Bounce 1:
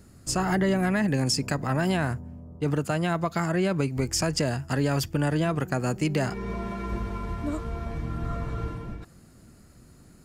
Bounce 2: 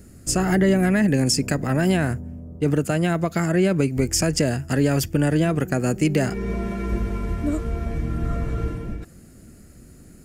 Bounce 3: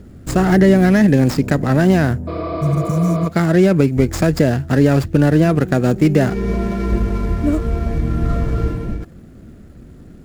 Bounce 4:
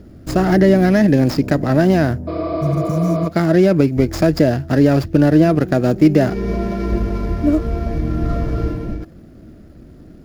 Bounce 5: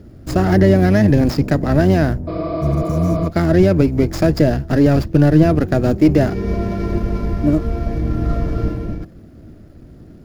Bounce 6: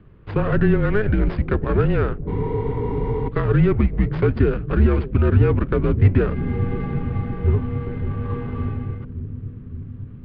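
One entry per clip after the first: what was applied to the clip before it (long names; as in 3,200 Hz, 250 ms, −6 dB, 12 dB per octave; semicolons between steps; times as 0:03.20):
graphic EQ with 10 bands 125 Hz −4 dB, 1,000 Hz −11 dB, 4,000 Hz −7 dB; level +8 dB
running median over 15 samples; healed spectral selection 0:02.30–0:03.24, 220–5,400 Hz after; level +7 dB
thirty-one-band graphic EQ 315 Hz +6 dB, 630 Hz +6 dB, 5,000 Hz +5 dB, 8,000 Hz −8 dB; level −2 dB
sub-octave generator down 1 octave, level −3 dB; level −1 dB
on a send: bucket-brigade delay 566 ms, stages 2,048, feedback 77%, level −11 dB; on the sum: single-sideband voice off tune −210 Hz 220–3,300 Hz; level −1.5 dB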